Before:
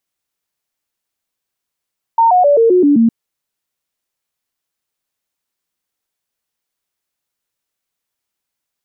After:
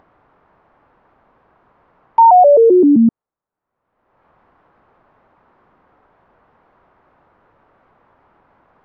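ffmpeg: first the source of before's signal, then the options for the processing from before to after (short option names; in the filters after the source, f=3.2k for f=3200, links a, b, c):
-f lavfi -i "aevalsrc='0.473*clip(min(mod(t,0.13),0.13-mod(t,0.13))/0.005,0,1)*sin(2*PI*915*pow(2,-floor(t/0.13)/3)*mod(t,0.13))':d=0.91:s=44100"
-af "lowpass=f=1.1k:w=0.5412,lowpass=f=1.1k:w=1.3066,acompressor=mode=upward:threshold=-33dB:ratio=2.5,crystalizer=i=9.5:c=0"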